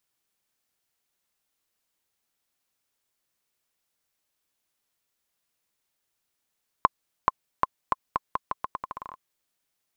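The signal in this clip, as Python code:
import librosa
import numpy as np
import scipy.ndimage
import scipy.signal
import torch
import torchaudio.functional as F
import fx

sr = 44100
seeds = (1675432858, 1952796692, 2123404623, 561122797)

y = fx.bouncing_ball(sr, first_gap_s=0.43, ratio=0.82, hz=1050.0, decay_ms=26.0, level_db=-4.0)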